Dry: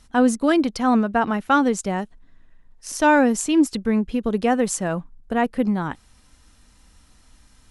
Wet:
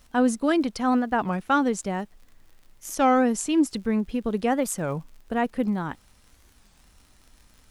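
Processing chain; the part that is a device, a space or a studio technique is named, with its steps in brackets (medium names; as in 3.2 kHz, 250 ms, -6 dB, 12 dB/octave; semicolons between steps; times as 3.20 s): warped LP (warped record 33 1/3 rpm, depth 250 cents; crackle 72 per s -39 dBFS; pink noise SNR 41 dB); trim -4 dB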